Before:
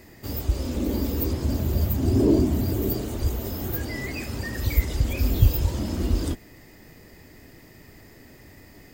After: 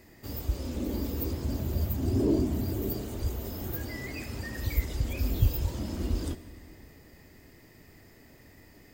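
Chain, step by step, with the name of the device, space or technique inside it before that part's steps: compressed reverb return (on a send at -7 dB: reverb RT60 1.7 s, pre-delay 51 ms + compressor, threshold -30 dBFS, peak gain reduction 15 dB); on the sum: gain -6.5 dB

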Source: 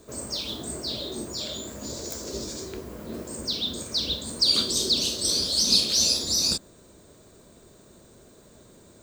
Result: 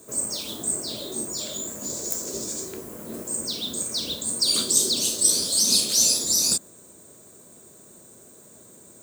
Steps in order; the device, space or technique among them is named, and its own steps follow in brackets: budget condenser microphone (HPF 120 Hz 12 dB/oct; resonant high shelf 6200 Hz +9.5 dB, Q 1.5)

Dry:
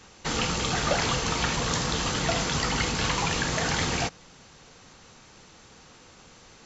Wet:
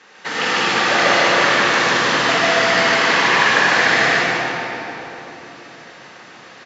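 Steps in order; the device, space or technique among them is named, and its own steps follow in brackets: station announcement (BPF 330–4500 Hz; bell 1800 Hz +8 dB 0.53 oct; loudspeakers at several distances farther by 51 m -1 dB, 99 m -9 dB; reverb RT60 3.6 s, pre-delay 41 ms, DRR -4.5 dB); gain +3 dB

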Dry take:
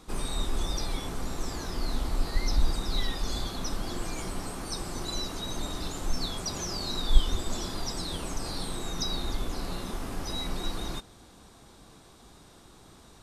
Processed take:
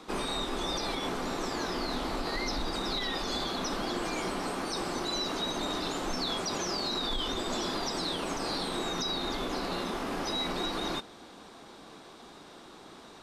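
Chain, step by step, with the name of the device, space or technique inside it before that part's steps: DJ mixer with the lows and highs turned down (three-band isolator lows -18 dB, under 200 Hz, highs -12 dB, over 5100 Hz; limiter -29.5 dBFS, peak gain reduction 10 dB); gain +6.5 dB

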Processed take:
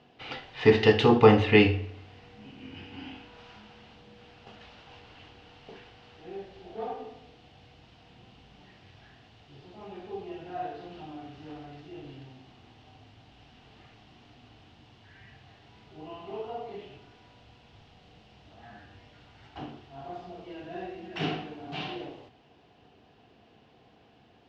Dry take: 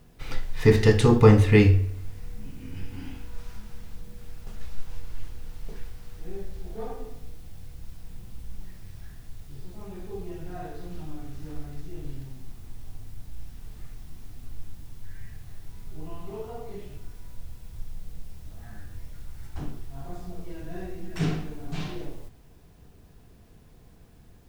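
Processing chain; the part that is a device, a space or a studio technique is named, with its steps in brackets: kitchen radio (speaker cabinet 170–4600 Hz, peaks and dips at 170 Hz -8 dB, 760 Hz +8 dB, 2900 Hz +9 dB)

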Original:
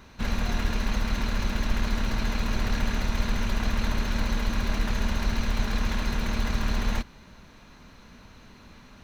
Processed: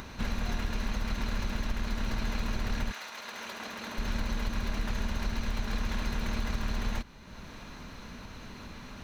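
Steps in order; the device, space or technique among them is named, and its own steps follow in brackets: upward and downward compression (upward compressor, threshold -34 dBFS; compressor, threshold -25 dBFS, peak gain reduction 7.5 dB); 2.91–3.97 HPF 910 Hz -> 240 Hz 12 dB/oct; gain -1.5 dB

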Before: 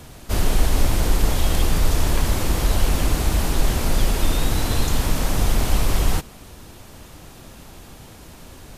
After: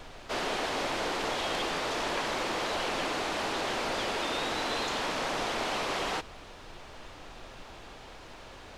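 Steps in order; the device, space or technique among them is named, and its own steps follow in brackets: aircraft cabin announcement (BPF 450–4100 Hz; soft clip -22.5 dBFS, distortion -21 dB; brown noise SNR 16 dB)

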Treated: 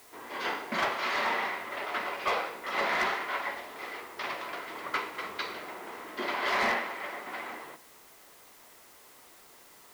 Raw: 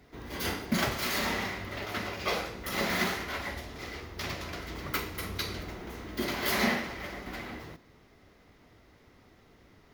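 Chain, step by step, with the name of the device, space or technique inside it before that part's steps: drive-through speaker (BPF 480–2900 Hz; bell 1000 Hz +5 dB 0.51 oct; hard clip -25 dBFS, distortion -18 dB; white noise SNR 22 dB); gain +3 dB

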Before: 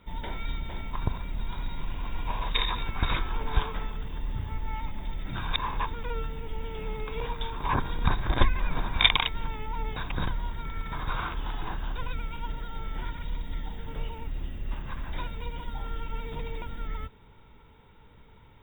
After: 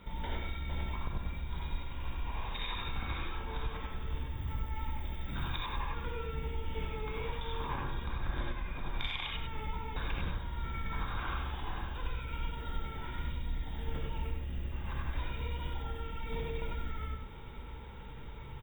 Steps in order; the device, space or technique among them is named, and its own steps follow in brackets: serial compression, peaks first (compressor, threshold -36 dBFS, peak gain reduction 21 dB; compressor 2.5:1, threshold -40 dBFS, peak gain reduction 6.5 dB); 4.29–5.72 high shelf 11000 Hz +8 dB; echo 0.101 s -5.5 dB; non-linear reverb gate 0.11 s rising, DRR -1 dB; gain +2.5 dB

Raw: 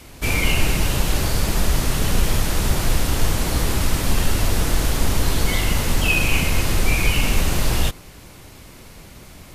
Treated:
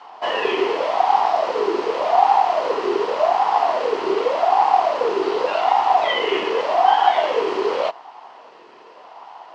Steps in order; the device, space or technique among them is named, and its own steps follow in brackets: voice changer toy (ring modulator with a swept carrier 590 Hz, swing 35%, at 0.86 Hz; speaker cabinet 500–3800 Hz, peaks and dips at 560 Hz -7 dB, 1000 Hz +8 dB, 1600 Hz -6 dB, 2300 Hz -6 dB, 3600 Hz -9 dB); gain +4.5 dB

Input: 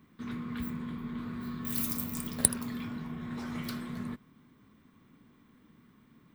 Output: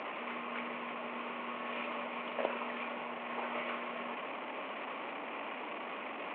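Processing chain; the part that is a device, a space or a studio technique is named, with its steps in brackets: digital answering machine (BPF 310–3400 Hz; delta modulation 16 kbps, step -40 dBFS; speaker cabinet 460–4300 Hz, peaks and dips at 590 Hz +8 dB, 880 Hz +4 dB, 1600 Hz -7 dB, 2500 Hz +4 dB, 3700 Hz -6 dB); gain +6.5 dB

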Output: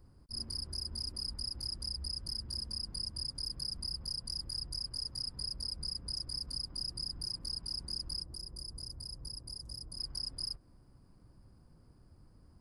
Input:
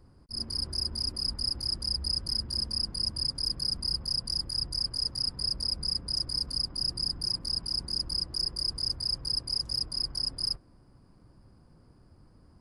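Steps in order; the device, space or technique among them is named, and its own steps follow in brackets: ASMR close-microphone chain (low shelf 120 Hz +5.5 dB; compressor, threshold -31 dBFS, peak gain reduction 7 dB; high shelf 7600 Hz +7.5 dB); 8.22–9.99 bell 2800 Hz -10.5 dB 2.4 oct; gain -6 dB

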